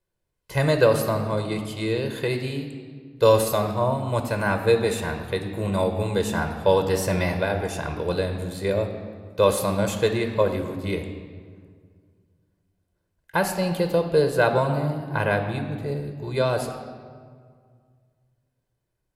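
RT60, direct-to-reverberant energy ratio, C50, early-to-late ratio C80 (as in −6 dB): 1.9 s, 6.0 dB, 8.0 dB, 9.0 dB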